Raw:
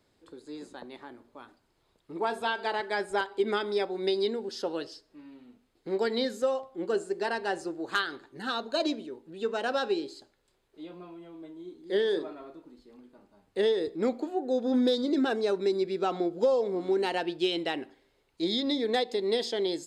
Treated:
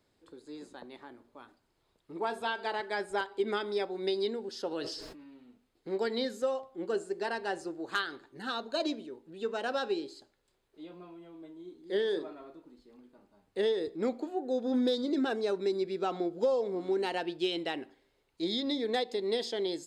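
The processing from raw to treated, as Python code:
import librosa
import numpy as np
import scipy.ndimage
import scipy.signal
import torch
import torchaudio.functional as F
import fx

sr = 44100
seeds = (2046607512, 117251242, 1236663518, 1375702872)

y = fx.sustainer(x, sr, db_per_s=39.0, at=(4.71, 5.24), fade=0.02)
y = y * 10.0 ** (-3.5 / 20.0)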